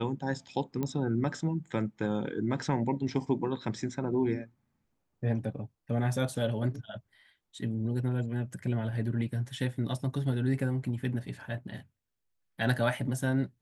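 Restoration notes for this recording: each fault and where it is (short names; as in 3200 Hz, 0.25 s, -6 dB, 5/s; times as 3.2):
0.83 pop -20 dBFS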